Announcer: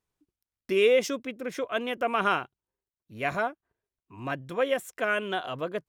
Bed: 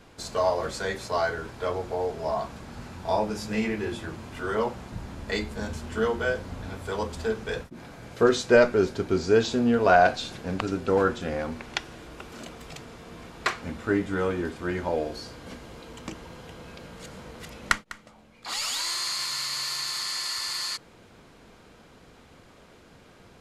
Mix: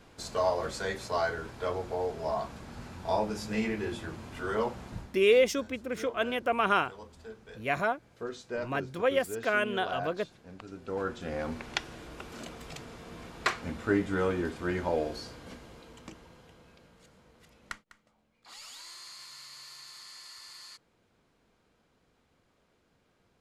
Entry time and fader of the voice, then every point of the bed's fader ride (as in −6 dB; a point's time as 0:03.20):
4.45 s, −0.5 dB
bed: 0:04.98 −3.5 dB
0:05.21 −18 dB
0:10.61 −18 dB
0:11.51 −2 dB
0:15.11 −2 dB
0:17.15 −17.5 dB